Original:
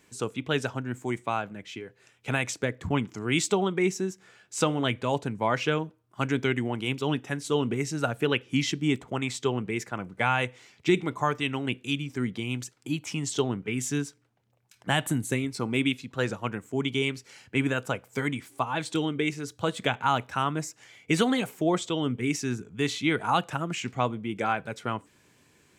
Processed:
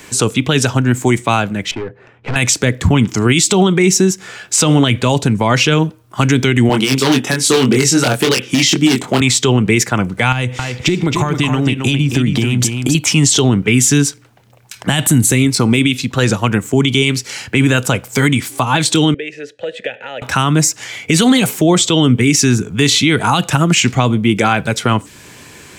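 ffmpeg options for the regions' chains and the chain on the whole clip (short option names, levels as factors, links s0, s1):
-filter_complex "[0:a]asettb=1/sr,asplit=3[s0][s1][s2];[s0]atrim=end=1.714[s3];[s1]atrim=start=1.71:end=2.36,asetpts=PTS-STARTPTS,afade=t=in:d=0.004:c=qsin,afade=t=out:st=0.646:d=0.004:c=qsin,aeval=exprs='(tanh(89.1*val(0)+0.3)-tanh(0.3))/89.1':c=same,adynamicsmooth=sensitivity=5:basefreq=1200[s4];[s2]atrim=start=2.356[s5];[s3][s4]acrossfade=d=0.004:c1=hsin:c2=qsin[s6];[s6][s5]acrossfade=d=0.004:c1=qsin:c2=hsin,asettb=1/sr,asplit=3[s7][s8][s9];[s7]atrim=end=6.694[s10];[s8]atrim=start=6.69:end=9.21,asetpts=PTS-STARTPTS,afade=t=in:d=0.004:c=qsin,afade=t=out:st=2.516:d=0.004:c=qsin,aeval=exprs='0.106*(abs(mod(val(0)/0.106+3,4)-2)-1)':c=same,highpass=180,asplit=2[s11][s12];[s12]adelay=23,volume=0.631[s13];[s11][s13]amix=inputs=2:normalize=0,atrim=end_sample=111132[s14];[s9]atrim=start=9.206[s15];[s10][s14]acrossfade=d=0.004:c1=hsin:c2=qsin[s16];[s16][s15]acrossfade=d=0.004:c1=qsin:c2=hsin,asettb=1/sr,asplit=3[s17][s18][s19];[s17]atrim=end=10.324[s20];[s18]atrim=start=10.32:end=12.95,asetpts=PTS-STARTPTS,afade=t=in:d=0.004:c=qsin,afade=t=out:st=2.626:d=0.004:c=qsin,lowshelf=f=350:g=8.5,acompressor=threshold=0.0282:ratio=10:attack=3.2:release=140:knee=1:detection=peak,aecho=1:1:270:0.473,atrim=end_sample=115983[s21];[s19]atrim=start=12.946[s22];[s20][s21]acrossfade=d=0.004:c1=hsin:c2=qsin[s23];[s23][s22]acrossfade=d=0.004:c1=qsin:c2=hsin,asettb=1/sr,asplit=3[s24][s25][s26];[s24]atrim=end=19.144[s27];[s25]atrim=start=19.14:end=20.22,asetpts=PTS-STARTPTS,afade=t=in:d=0.004:c=qsin,afade=t=out:st=1.076:d=0.004:c=qsin,acompressor=threshold=0.0355:ratio=2.5:attack=3.2:release=140:knee=1:detection=peak,asplit=3[s28][s29][s30];[s28]bandpass=f=530:t=q:w=8,volume=1[s31];[s29]bandpass=f=1840:t=q:w=8,volume=0.501[s32];[s30]bandpass=f=2480:t=q:w=8,volume=0.355[s33];[s31][s32][s33]amix=inputs=3:normalize=0[s34];[s26]atrim=start=20.216[s35];[s27][s34]acrossfade=d=0.004:c1=hsin:c2=qsin[s36];[s36][s35]acrossfade=d=0.004:c1=qsin:c2=hsin,equalizer=f=220:w=0.42:g=-3.5,acrossover=split=310|3000[s37][s38][s39];[s38]acompressor=threshold=0.00251:ratio=1.5[s40];[s37][s40][s39]amix=inputs=3:normalize=0,alimiter=level_in=21.1:limit=0.891:release=50:level=0:latency=1,volume=0.841"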